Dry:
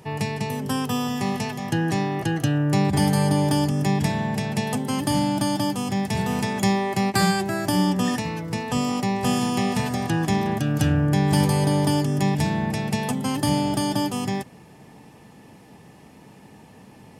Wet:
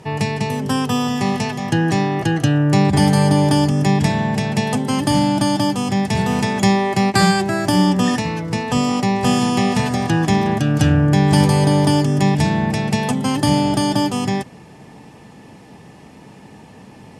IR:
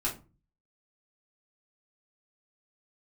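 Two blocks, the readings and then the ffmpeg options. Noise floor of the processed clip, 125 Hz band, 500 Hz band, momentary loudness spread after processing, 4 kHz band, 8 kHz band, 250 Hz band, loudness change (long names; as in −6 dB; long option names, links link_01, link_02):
−43 dBFS, +6.0 dB, +6.0 dB, 6 LU, +6.0 dB, +4.0 dB, +6.0 dB, +6.0 dB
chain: -af "lowpass=9100,volume=6dB"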